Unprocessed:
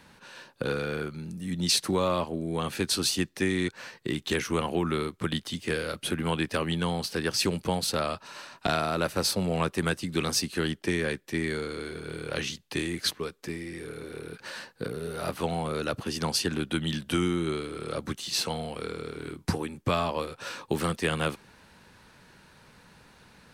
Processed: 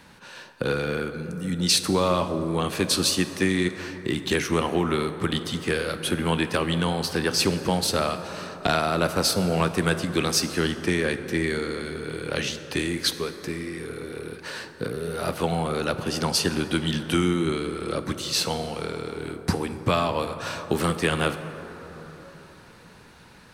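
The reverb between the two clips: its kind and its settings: plate-style reverb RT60 4.1 s, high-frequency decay 0.35×, DRR 9 dB; gain +4 dB

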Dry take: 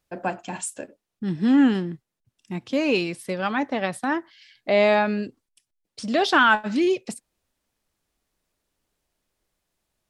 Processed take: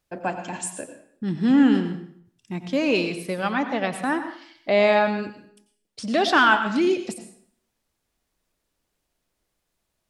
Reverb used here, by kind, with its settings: plate-style reverb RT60 0.6 s, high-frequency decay 0.85×, pre-delay 80 ms, DRR 8.5 dB

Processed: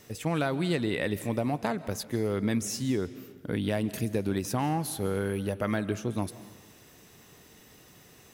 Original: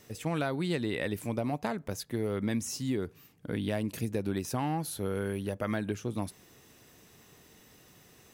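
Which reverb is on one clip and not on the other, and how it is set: digital reverb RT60 1.2 s, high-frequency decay 0.9×, pre-delay 0.11 s, DRR 15.5 dB; gain +3 dB

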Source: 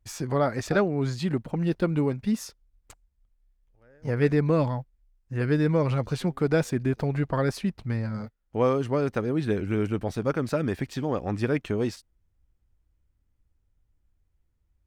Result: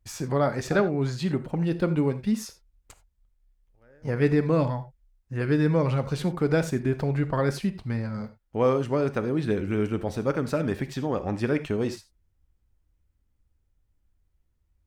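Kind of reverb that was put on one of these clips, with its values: non-linear reverb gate 0.11 s flat, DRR 10.5 dB

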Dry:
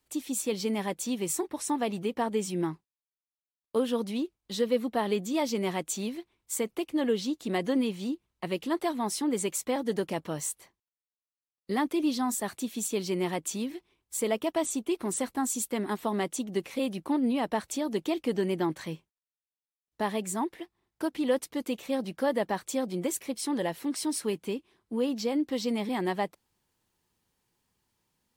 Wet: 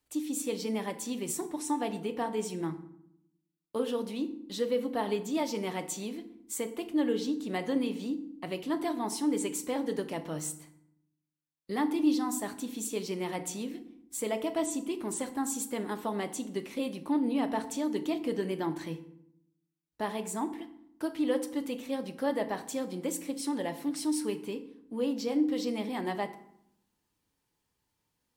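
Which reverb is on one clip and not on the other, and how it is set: FDN reverb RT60 0.72 s, low-frequency decay 1.55×, high-frequency decay 0.65×, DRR 7.5 dB; gain -4 dB

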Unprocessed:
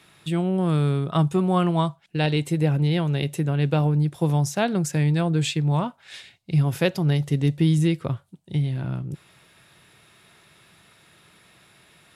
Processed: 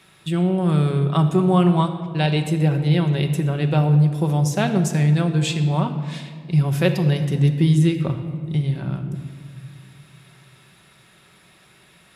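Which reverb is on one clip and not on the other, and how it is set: shoebox room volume 3100 m³, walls mixed, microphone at 1.1 m; gain +1 dB

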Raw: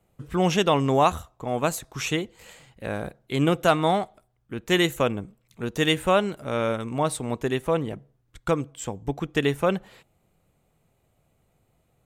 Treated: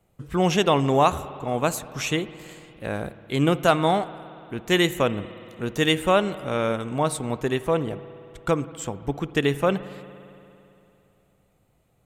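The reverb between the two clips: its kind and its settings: spring tank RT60 2.9 s, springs 57 ms, chirp 65 ms, DRR 15 dB; gain +1 dB

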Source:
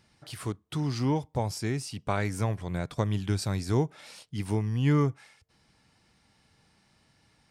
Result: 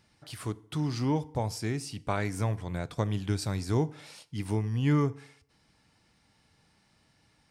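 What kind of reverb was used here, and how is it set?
FDN reverb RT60 0.66 s, low-frequency decay 0.9×, high-frequency decay 0.75×, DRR 16 dB; gain -1.5 dB

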